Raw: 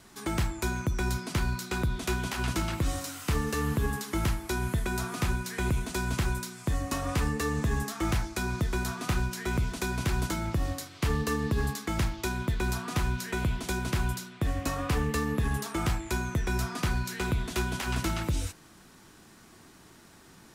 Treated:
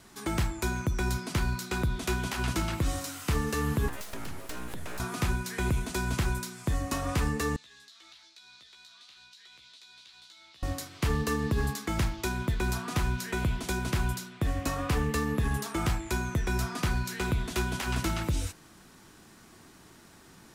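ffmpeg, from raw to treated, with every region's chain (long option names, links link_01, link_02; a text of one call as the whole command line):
ffmpeg -i in.wav -filter_complex "[0:a]asettb=1/sr,asplit=3[link_01][link_02][link_03];[link_01]atrim=end=3.884[link_04];[link_02]atrim=start=3.88:end=5,asetpts=PTS-STARTPTS,afade=type=in:duration=0.004:curve=qsin,afade=type=out:start_time=1.116:duration=0.004:curve=qsin,acompressor=threshold=-31dB:ratio=12:attack=3.2:release=140:knee=1:detection=peak,aeval=exprs='abs(val(0))':channel_layout=same[link_05];[link_03]atrim=start=4.996[link_06];[link_04][link_05]acrossfade=duration=0.004:curve1=hsin:curve2=qsin[link_07];[link_07][link_06]acrossfade=duration=0.004:curve1=qsin:curve2=hsin,asettb=1/sr,asplit=3[link_08][link_09][link_10];[link_08]atrim=end=7.564[link_11];[link_09]atrim=start=7.56:end=10.63,asetpts=PTS-STARTPTS,afade=type=in:duration=0.004:curve=qsin,afade=type=out:start_time=3.066:duration=0.004:curve=qsin,bandpass=frequency=3900:width_type=q:width=4.4,acompressor=threshold=-51dB:ratio=5:attack=3.2:release=140:knee=1:detection=peak,asplit=2[link_12][link_13];[link_13]adelay=15,volume=-5dB[link_14];[link_12][link_14]amix=inputs=2:normalize=0,atrim=end_sample=135387[link_15];[link_10]atrim=start=10.626[link_16];[link_11][link_15]acrossfade=duration=0.004:curve1=hsin:curve2=qsin[link_17];[link_17][link_16]acrossfade=duration=0.004:curve1=qsin:curve2=hsin" out.wav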